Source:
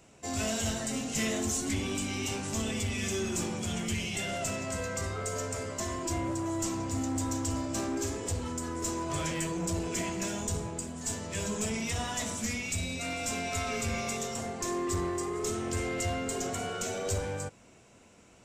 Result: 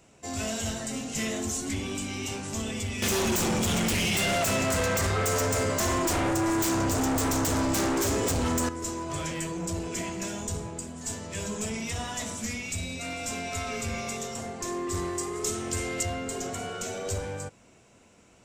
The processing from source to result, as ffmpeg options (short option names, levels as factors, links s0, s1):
-filter_complex "[0:a]asettb=1/sr,asplit=3[s0][s1][s2];[s0]atrim=end=3.024[s3];[s1]atrim=start=3.02:end=8.69,asetpts=PTS-STARTPTS,afade=t=in:d=0.004:c=qsin,afade=t=out:st=5.666:d=0.004:c=qsin,aeval=exprs='0.0708*sin(PI/2*2.82*val(0)/0.0708)':c=same[s4];[s2]atrim=start=8.686[s5];[s3][s4]acrossfade=d=0.004:c1=hsin:c2=qsin[s6];[s6][s5]acrossfade=d=0.004:c1=qsin:c2=hsin,asettb=1/sr,asplit=3[s7][s8][s9];[s7]atrim=end=14.944[s10];[s8]atrim=start=14.94:end=16.03,asetpts=PTS-STARTPTS,afade=t=in:d=0.004:c=qsin,afade=t=out:st=1.086:d=0.004:c=qsin,highshelf=f=3200:g=7.5[s11];[s9]atrim=start=16.026[s12];[s10][s11]acrossfade=d=0.004:c1=hsin:c2=qsin[s13];[s13][s12]acrossfade=d=0.004:c1=qsin:c2=hsin"